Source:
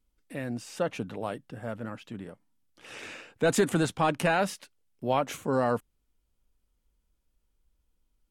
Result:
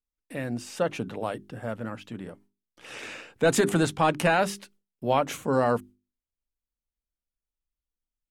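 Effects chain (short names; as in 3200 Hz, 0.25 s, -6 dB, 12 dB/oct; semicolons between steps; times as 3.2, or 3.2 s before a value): gate with hold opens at -57 dBFS; notches 50/100/150/200/250/300/350/400 Hz; gain +3 dB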